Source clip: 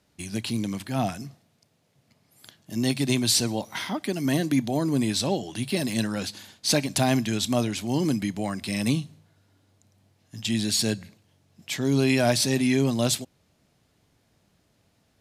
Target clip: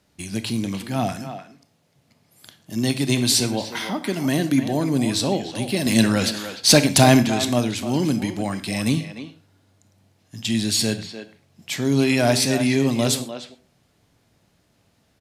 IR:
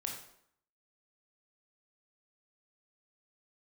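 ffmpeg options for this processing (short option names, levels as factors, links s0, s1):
-filter_complex "[0:a]asettb=1/sr,asplit=3[s0][s1][s2];[s0]atrim=end=5.864[s3];[s1]atrim=start=5.86:end=7.23,asetpts=PTS-STARTPTS,afade=t=in:d=0.004:c=qsin,afade=t=out:st=1.366:d=0.004:c=qsin,acontrast=68[s4];[s2]atrim=start=7.226[s5];[s3][s4]acrossfade=d=0.004:c1=hsin:c2=qsin[s6];[s6][s5]acrossfade=d=0.004:c1=qsin:c2=hsin,asplit=2[s7][s8];[s8]adelay=300,highpass=300,lowpass=3400,asoftclip=type=hard:threshold=0.211,volume=0.355[s9];[s7][s9]amix=inputs=2:normalize=0,asplit=2[s10][s11];[1:a]atrim=start_sample=2205,atrim=end_sample=6174[s12];[s11][s12]afir=irnorm=-1:irlink=0,volume=0.562[s13];[s10][s13]amix=inputs=2:normalize=0"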